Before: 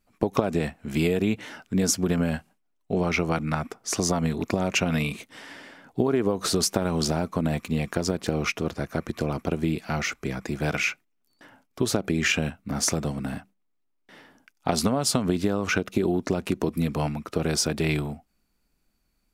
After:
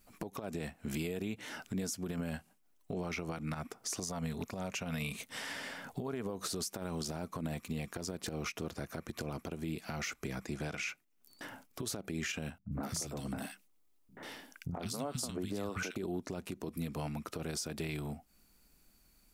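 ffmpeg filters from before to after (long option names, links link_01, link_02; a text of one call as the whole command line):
ffmpeg -i in.wav -filter_complex "[0:a]asettb=1/sr,asplit=3[link_01][link_02][link_03];[link_01]atrim=end=4.034[link_04];[link_02]atrim=start=4.03:end=6.3,asetpts=PTS-STARTPTS,afade=type=in:duration=0.004:curve=qsin,afade=type=out:start_time=2.266:duration=0.004:curve=qsin,equalizer=frequency=330:width_type=o:width=0.25:gain=-14[link_05];[link_03]atrim=start=6.296[link_06];[link_04][link_05]acrossfade=duration=0.004:curve1=hsin:curve2=qsin[link_07];[link_07][link_06]acrossfade=duration=0.004:curve1=qsin:curve2=hsin,asettb=1/sr,asplit=3[link_08][link_09][link_10];[link_08]atrim=end=10.464[link_11];[link_09]atrim=start=10.46:end=10.89,asetpts=PTS-STARTPTS,afade=type=in:duration=0.004:curve=qsin,afade=type=out:start_time=0.426:duration=0.004:curve=qsin,lowpass=9800[link_12];[link_10]atrim=start=10.886[link_13];[link_11][link_12]acrossfade=duration=0.004:curve1=hsin:curve2=qsin[link_14];[link_14][link_13]acrossfade=duration=0.004:curve1=qsin:curve2=hsin,asettb=1/sr,asplit=3[link_15][link_16][link_17];[link_15]atrim=end=12.584[link_18];[link_16]atrim=start=12.58:end=15.96,asetpts=PTS-STARTPTS,afade=type=in:duration=0.004:curve=qsin,afade=type=out:start_time=3.376:duration=0.004:curve=qsin,acrossover=split=190|1700[link_19][link_20][link_21];[link_20]adelay=80[link_22];[link_21]adelay=140[link_23];[link_19][link_22][link_23]amix=inputs=3:normalize=0,atrim=end_sample=149058[link_24];[link_17]atrim=start=15.956[link_25];[link_18][link_24]acrossfade=duration=0.004:curve1=hsin:curve2=qsin[link_26];[link_26][link_25]acrossfade=duration=0.004:curve1=qsin:curve2=hsin,highshelf=frequency=5800:gain=9,acompressor=threshold=-43dB:ratio=3,alimiter=level_in=7.5dB:limit=-24dB:level=0:latency=1:release=64,volume=-7.5dB,volume=4dB" out.wav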